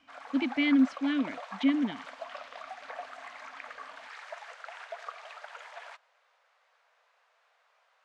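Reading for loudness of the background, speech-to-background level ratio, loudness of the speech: -44.0 LUFS, 15.5 dB, -28.5 LUFS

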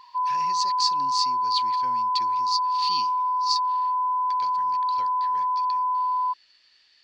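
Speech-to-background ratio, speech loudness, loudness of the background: -5.5 dB, -29.5 LUFS, -24.0 LUFS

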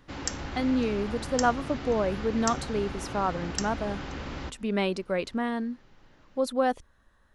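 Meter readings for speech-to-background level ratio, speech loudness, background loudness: 6.5 dB, -29.5 LUFS, -36.0 LUFS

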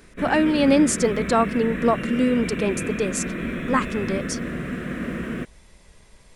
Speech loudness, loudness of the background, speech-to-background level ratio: -22.0 LUFS, -29.0 LUFS, 7.0 dB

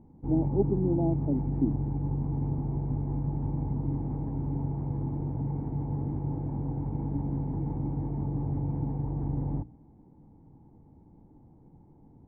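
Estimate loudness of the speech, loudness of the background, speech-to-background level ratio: -30.5 LUFS, -32.0 LUFS, 1.5 dB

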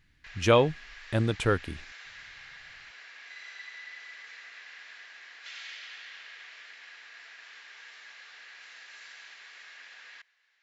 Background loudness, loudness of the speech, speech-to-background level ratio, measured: -45.5 LUFS, -26.5 LUFS, 19.0 dB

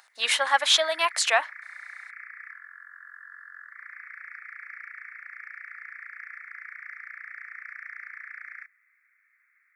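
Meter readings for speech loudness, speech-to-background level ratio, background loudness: -22.5 LUFS, 19.0 dB, -41.5 LUFS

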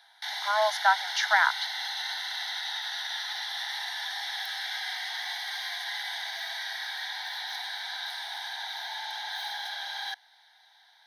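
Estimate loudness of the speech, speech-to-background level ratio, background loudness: -25.5 LUFS, 7.5 dB, -33.0 LUFS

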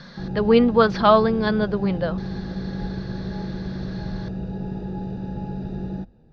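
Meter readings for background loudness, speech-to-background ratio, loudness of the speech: -31.0 LUFS, 11.5 dB, -19.5 LUFS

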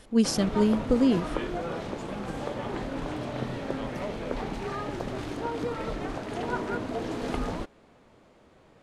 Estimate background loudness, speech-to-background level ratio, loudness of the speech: -33.5 LUFS, 8.5 dB, -25.0 LUFS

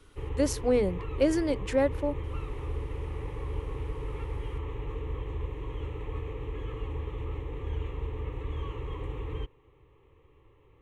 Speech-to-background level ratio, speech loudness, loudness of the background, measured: 9.0 dB, -28.5 LUFS, -37.5 LUFS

